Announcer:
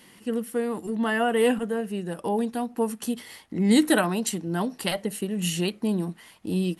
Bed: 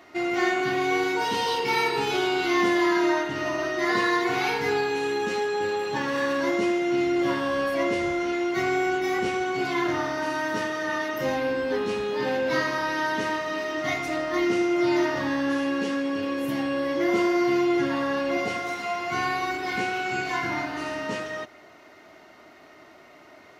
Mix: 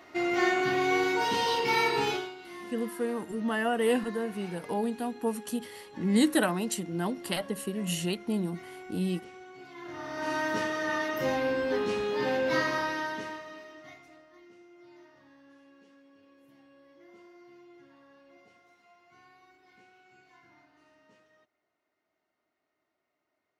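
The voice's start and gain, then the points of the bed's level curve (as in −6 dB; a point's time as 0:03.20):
2.45 s, −4.5 dB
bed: 0:02.09 −2 dB
0:02.36 −21.5 dB
0:09.74 −21.5 dB
0:10.32 −2.5 dB
0:12.78 −2.5 dB
0:14.42 −32 dB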